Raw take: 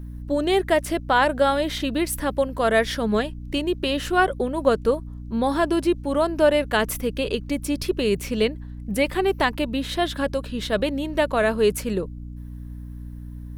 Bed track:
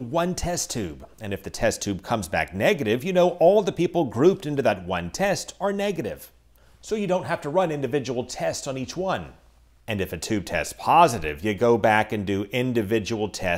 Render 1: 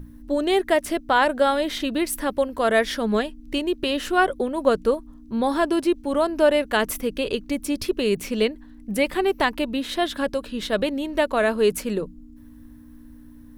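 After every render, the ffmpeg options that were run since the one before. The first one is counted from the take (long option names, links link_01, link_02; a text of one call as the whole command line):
ffmpeg -i in.wav -af "bandreject=frequency=60:width_type=h:width=6,bandreject=frequency=120:width_type=h:width=6,bandreject=frequency=180:width_type=h:width=6" out.wav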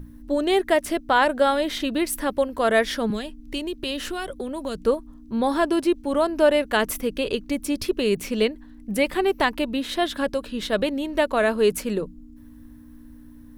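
ffmpeg -i in.wav -filter_complex "[0:a]asettb=1/sr,asplit=3[link_01][link_02][link_03];[link_01]atrim=end=3.104[link_04];[link_02]atrim=start=3.1:end=4.86,asetpts=PTS-STARTPTS,afade=type=in:duration=0.004:curve=qsin,afade=type=out:start_time=1.756:duration=0.004:curve=qsin,acrossover=split=190|3000[link_05][link_06][link_07];[link_06]acompressor=threshold=-28dB:ratio=6:attack=3.2:release=140:knee=2.83:detection=peak[link_08];[link_05][link_08][link_07]amix=inputs=3:normalize=0[link_09];[link_03]atrim=start=4.856[link_10];[link_04][link_09]acrossfade=duration=0.004:curve1=hsin:curve2=qsin[link_11];[link_11][link_10]acrossfade=duration=0.004:curve1=qsin:curve2=hsin" out.wav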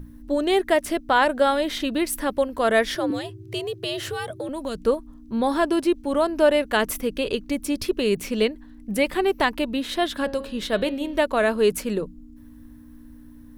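ffmpeg -i in.wav -filter_complex "[0:a]asettb=1/sr,asplit=3[link_01][link_02][link_03];[link_01]atrim=end=2.954[link_04];[link_02]atrim=start=2.95:end=4.49,asetpts=PTS-STARTPTS,afade=type=in:duration=0.004:curve=qsin,afade=type=out:start_time=1.536:duration=0.004:curve=qsin,afreqshift=81[link_05];[link_03]atrim=start=4.486[link_06];[link_04][link_05]acrossfade=duration=0.004:curve1=hsin:curve2=qsin[link_07];[link_07][link_06]acrossfade=duration=0.004:curve1=qsin:curve2=hsin,asettb=1/sr,asplit=3[link_08][link_09][link_10];[link_08]atrim=end=10.224[link_11];[link_09]atrim=start=10.22:end=11.19,asetpts=PTS-STARTPTS,afade=type=in:duration=0.004:curve=qsin,afade=type=out:start_time=0.966:duration=0.004:curve=qsin,bandreject=frequency=136.8:width_type=h:width=4,bandreject=frequency=273.6:width_type=h:width=4,bandreject=frequency=410.4:width_type=h:width=4,bandreject=frequency=547.2:width_type=h:width=4,bandreject=frequency=684:width_type=h:width=4,bandreject=frequency=820.8:width_type=h:width=4,bandreject=frequency=957.6:width_type=h:width=4,bandreject=frequency=1094.4:width_type=h:width=4,bandreject=frequency=1231.2:width_type=h:width=4,bandreject=frequency=1368:width_type=h:width=4,bandreject=frequency=1504.8:width_type=h:width=4,bandreject=frequency=1641.6:width_type=h:width=4,bandreject=frequency=1778.4:width_type=h:width=4,bandreject=frequency=1915.2:width_type=h:width=4,bandreject=frequency=2052:width_type=h:width=4,bandreject=frequency=2188.8:width_type=h:width=4,bandreject=frequency=2325.6:width_type=h:width=4,bandreject=frequency=2462.4:width_type=h:width=4,bandreject=frequency=2599.2:width_type=h:width=4,bandreject=frequency=2736:width_type=h:width=4,bandreject=frequency=2872.8:width_type=h:width=4,bandreject=frequency=3009.6:width_type=h:width=4,bandreject=frequency=3146.4:width_type=h:width=4,bandreject=frequency=3283.2:width_type=h:width=4,bandreject=frequency=3420:width_type=h:width=4,bandreject=frequency=3556.8:width_type=h:width=4,bandreject=frequency=3693.6:width_type=h:width=4,bandreject=frequency=3830.4:width_type=h:width=4,bandreject=frequency=3967.2:width_type=h:width=4,bandreject=frequency=4104:width_type=h:width=4,bandreject=frequency=4240.8:width_type=h:width=4,bandreject=frequency=4377.6:width_type=h:width=4,bandreject=frequency=4514.4:width_type=h:width=4,bandreject=frequency=4651.2:width_type=h:width=4,bandreject=frequency=4788:width_type=h:width=4[link_12];[link_10]atrim=start=11.186[link_13];[link_11][link_12]acrossfade=duration=0.004:curve1=hsin:curve2=qsin[link_14];[link_14][link_13]acrossfade=duration=0.004:curve1=qsin:curve2=hsin" out.wav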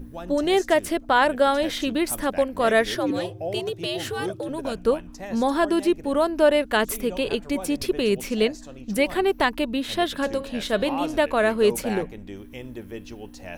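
ffmpeg -i in.wav -i bed.wav -filter_complex "[1:a]volume=-14dB[link_01];[0:a][link_01]amix=inputs=2:normalize=0" out.wav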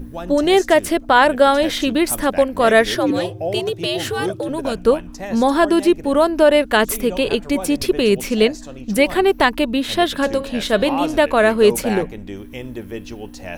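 ffmpeg -i in.wav -af "volume=6.5dB,alimiter=limit=-2dB:level=0:latency=1" out.wav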